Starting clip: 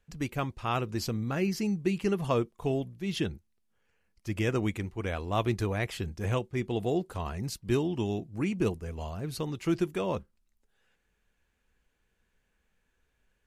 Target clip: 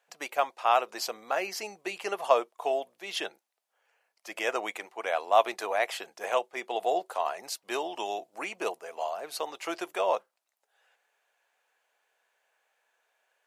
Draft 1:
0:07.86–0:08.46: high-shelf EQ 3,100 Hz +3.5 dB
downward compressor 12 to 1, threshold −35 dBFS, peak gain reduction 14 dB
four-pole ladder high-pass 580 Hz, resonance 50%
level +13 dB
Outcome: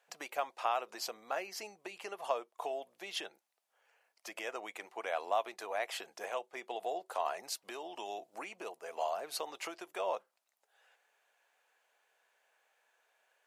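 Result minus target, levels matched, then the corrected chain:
downward compressor: peak gain reduction +14 dB
0:07.86–0:08.46: high-shelf EQ 3,100 Hz +3.5 dB
four-pole ladder high-pass 580 Hz, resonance 50%
level +13 dB

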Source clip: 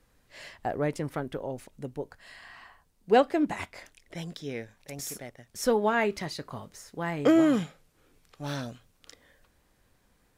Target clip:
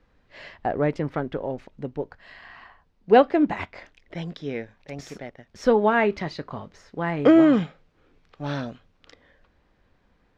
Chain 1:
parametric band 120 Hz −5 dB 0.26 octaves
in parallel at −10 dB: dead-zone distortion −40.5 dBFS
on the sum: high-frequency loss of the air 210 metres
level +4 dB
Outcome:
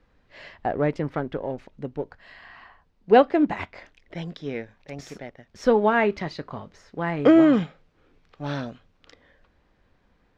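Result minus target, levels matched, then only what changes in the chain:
dead-zone distortion: distortion +8 dB
change: dead-zone distortion −51 dBFS

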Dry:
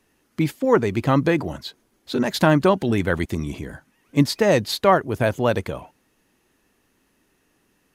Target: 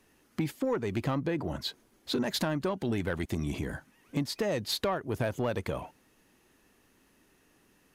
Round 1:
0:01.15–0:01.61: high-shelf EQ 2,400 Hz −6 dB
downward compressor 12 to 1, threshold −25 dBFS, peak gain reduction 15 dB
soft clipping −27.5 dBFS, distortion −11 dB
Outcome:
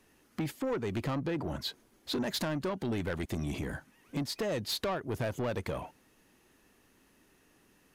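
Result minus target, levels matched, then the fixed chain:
soft clipping: distortion +8 dB
0:01.15–0:01.61: high-shelf EQ 2,400 Hz −6 dB
downward compressor 12 to 1, threshold −25 dBFS, peak gain reduction 15 dB
soft clipping −20.5 dBFS, distortion −19 dB

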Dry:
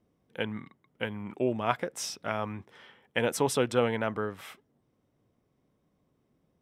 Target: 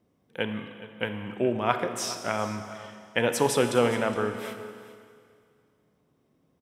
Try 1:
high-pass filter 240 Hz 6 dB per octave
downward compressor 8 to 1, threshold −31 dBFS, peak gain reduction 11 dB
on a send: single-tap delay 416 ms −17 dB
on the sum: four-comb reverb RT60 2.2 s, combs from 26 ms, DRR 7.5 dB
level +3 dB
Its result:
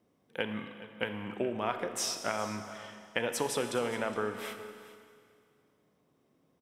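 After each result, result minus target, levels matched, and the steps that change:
downward compressor: peak gain reduction +11 dB; 125 Hz band −3.0 dB
remove: downward compressor 8 to 1, threshold −31 dBFS, peak gain reduction 11 dB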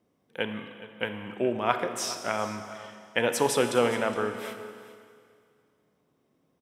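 125 Hz band −4.5 dB
change: high-pass filter 80 Hz 6 dB per octave

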